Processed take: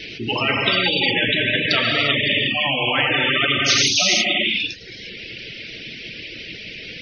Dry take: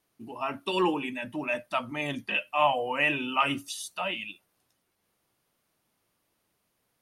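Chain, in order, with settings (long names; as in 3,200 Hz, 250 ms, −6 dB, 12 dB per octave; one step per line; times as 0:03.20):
in parallel at +3 dB: downward compressor, threshold −33 dBFS, peak gain reduction 14 dB
on the sum: hum removal 49.05 Hz, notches 6
speech leveller within 4 dB 2 s
drawn EQ curve 470 Hz 0 dB, 1,000 Hz −21 dB, 2,400 Hz +13 dB, 5,500 Hz +2 dB, 8,200 Hz −18 dB
gate on every frequency bin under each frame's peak −20 dB strong
reverb whose tail is shaped and stops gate 380 ms flat, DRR 1.5 dB
reverb reduction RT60 0.55 s
every bin compressed towards the loudest bin 10 to 1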